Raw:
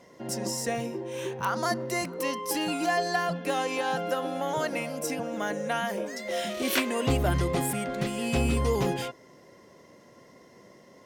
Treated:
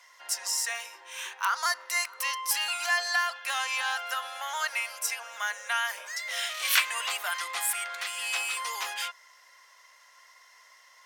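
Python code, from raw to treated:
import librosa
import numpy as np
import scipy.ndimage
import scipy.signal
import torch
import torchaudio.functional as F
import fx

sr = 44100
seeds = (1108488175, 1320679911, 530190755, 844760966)

y = scipy.signal.sosfilt(scipy.signal.butter(4, 1100.0, 'highpass', fs=sr, output='sos'), x)
y = F.gain(torch.from_numpy(y), 5.0).numpy()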